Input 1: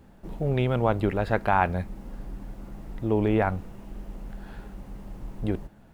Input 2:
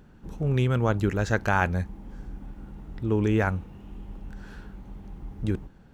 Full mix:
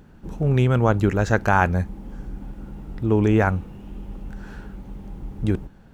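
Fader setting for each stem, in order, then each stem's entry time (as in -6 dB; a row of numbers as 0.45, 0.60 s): -5.5, +3.0 dB; 0.00, 0.00 s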